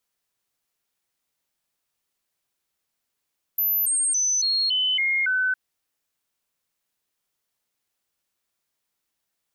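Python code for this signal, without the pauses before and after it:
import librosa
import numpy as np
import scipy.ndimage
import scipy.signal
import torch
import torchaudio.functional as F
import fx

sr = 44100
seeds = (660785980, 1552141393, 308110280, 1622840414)

y = fx.stepped_sweep(sr, from_hz=12100.0, direction='down', per_octave=2, tones=7, dwell_s=0.28, gap_s=0.0, level_db=-19.5)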